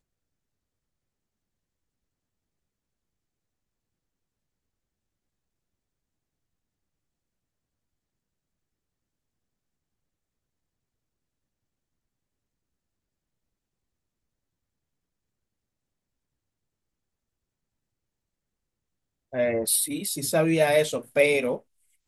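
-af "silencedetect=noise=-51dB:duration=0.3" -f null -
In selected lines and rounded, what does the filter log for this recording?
silence_start: 0.00
silence_end: 19.32 | silence_duration: 19.32
silence_start: 21.61
silence_end: 22.08 | silence_duration: 0.47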